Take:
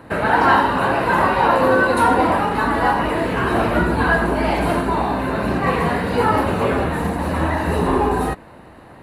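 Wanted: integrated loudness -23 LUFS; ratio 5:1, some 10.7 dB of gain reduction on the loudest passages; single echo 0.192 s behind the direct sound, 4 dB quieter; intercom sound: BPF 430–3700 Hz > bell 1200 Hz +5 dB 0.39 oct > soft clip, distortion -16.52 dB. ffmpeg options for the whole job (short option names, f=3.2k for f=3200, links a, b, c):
-af "acompressor=threshold=-23dB:ratio=5,highpass=430,lowpass=3.7k,equalizer=f=1.2k:t=o:w=0.39:g=5,aecho=1:1:192:0.631,asoftclip=threshold=-19.5dB,volume=4dB"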